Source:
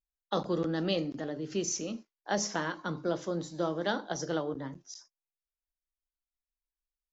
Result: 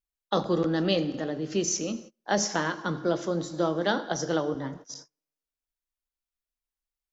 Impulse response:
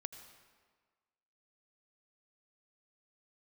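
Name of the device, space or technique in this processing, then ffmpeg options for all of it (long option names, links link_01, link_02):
keyed gated reverb: -filter_complex "[0:a]asplit=3[link_01][link_02][link_03];[1:a]atrim=start_sample=2205[link_04];[link_02][link_04]afir=irnorm=-1:irlink=0[link_05];[link_03]apad=whole_len=314111[link_06];[link_05][link_06]sidechaingate=range=-33dB:threshold=-51dB:ratio=16:detection=peak,volume=1.5dB[link_07];[link_01][link_07]amix=inputs=2:normalize=0"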